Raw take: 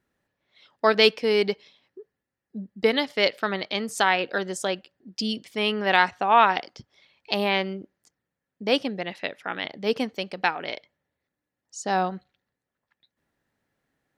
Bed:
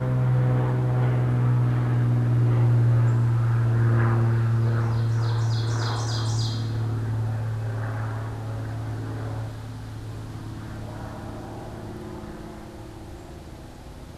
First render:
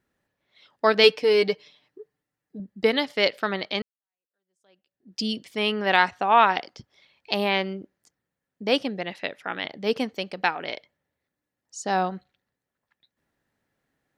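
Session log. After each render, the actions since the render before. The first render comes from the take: 1.03–2.60 s: comb 6.7 ms, depth 60%; 3.82–5.16 s: fade in exponential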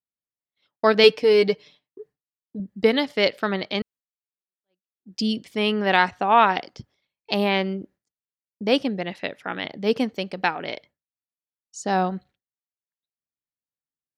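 bass shelf 360 Hz +7 dB; expander -45 dBFS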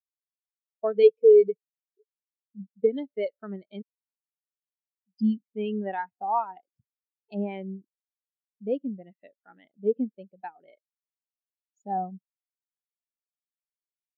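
compression 3:1, threshold -19 dBFS, peak gain reduction 8.5 dB; spectral contrast expander 2.5:1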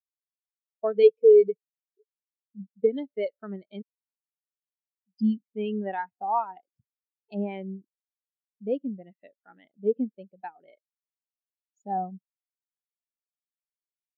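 no audible change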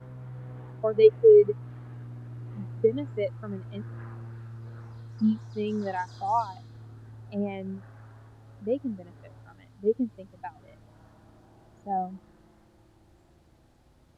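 add bed -20 dB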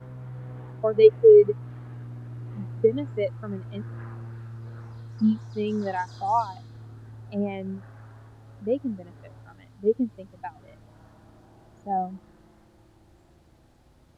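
trim +2.5 dB

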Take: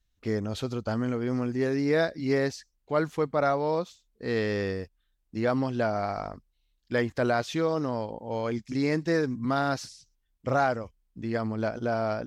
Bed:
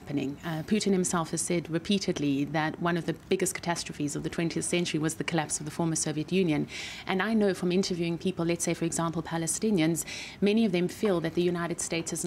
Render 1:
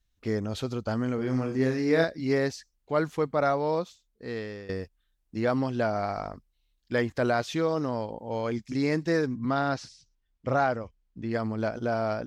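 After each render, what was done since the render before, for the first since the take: 1.15–2.04 s: flutter echo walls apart 5.3 m, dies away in 0.31 s; 3.78–4.69 s: fade out, to -16 dB; 9.27–11.31 s: distance through air 75 m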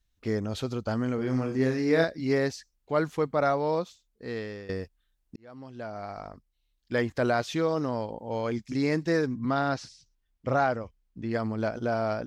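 5.36–7.09 s: fade in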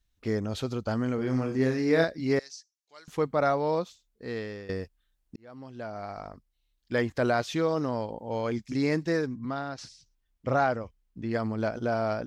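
2.39–3.08 s: band-pass filter 5.8 kHz, Q 2.5; 8.92–9.78 s: fade out, to -10.5 dB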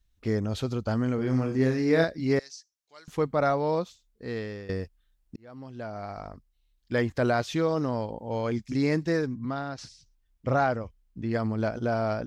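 bass shelf 150 Hz +6 dB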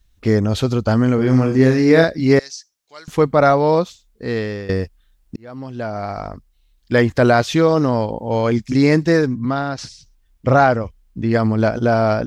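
trim +11.5 dB; peak limiter -2 dBFS, peak gain reduction 2.5 dB

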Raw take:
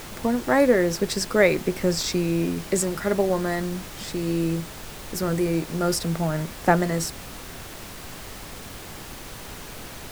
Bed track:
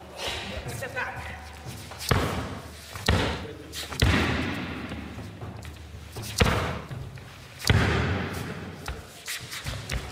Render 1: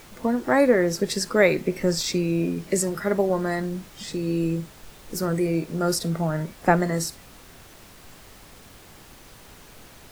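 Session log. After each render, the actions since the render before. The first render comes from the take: noise print and reduce 9 dB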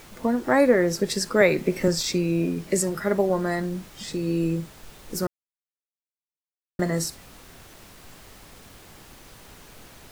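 1.41–1.88 s: three bands compressed up and down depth 40%; 5.27–6.79 s: mute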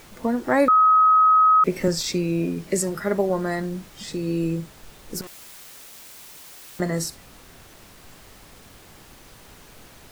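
0.68–1.64 s: bleep 1.27 kHz -12 dBFS; 5.21–6.80 s: one-bit comparator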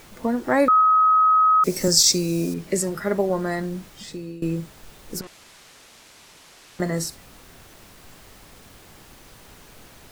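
0.81–2.54 s: resonant high shelf 3.9 kHz +11.5 dB, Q 1.5; 3.89–4.42 s: fade out, to -17.5 dB; 5.20–6.80 s: distance through air 57 m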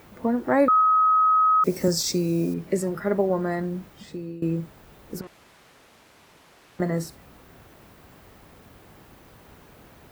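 high-pass 46 Hz; peaking EQ 6.9 kHz -11.5 dB 2.7 oct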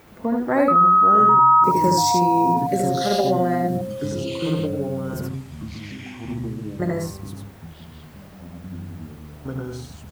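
delay 74 ms -3.5 dB; ever faster or slower copies 381 ms, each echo -5 st, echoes 3, each echo -6 dB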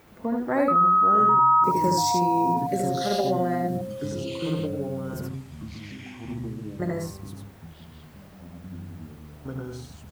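trim -4.5 dB

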